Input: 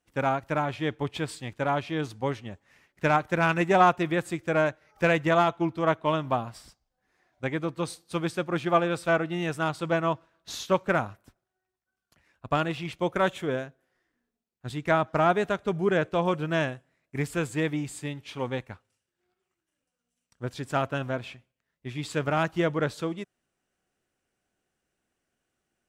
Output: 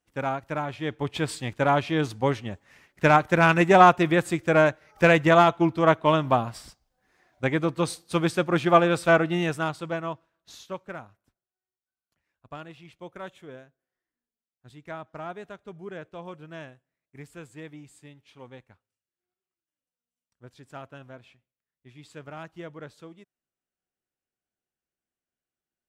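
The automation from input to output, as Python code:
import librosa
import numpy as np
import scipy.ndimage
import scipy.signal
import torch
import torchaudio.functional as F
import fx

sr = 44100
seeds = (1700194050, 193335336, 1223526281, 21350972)

y = fx.gain(x, sr, db=fx.line((0.78, -2.5), (1.32, 5.0), (9.36, 5.0), (9.87, -4.0), (11.08, -14.5)))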